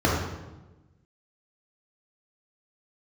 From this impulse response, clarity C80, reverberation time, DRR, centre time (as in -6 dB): 3.5 dB, 1.1 s, -5.5 dB, 66 ms